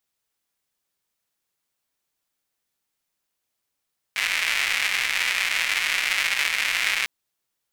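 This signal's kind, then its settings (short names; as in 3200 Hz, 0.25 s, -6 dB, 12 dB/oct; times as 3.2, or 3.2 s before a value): rain from filtered ticks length 2.90 s, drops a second 280, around 2200 Hz, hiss -28.5 dB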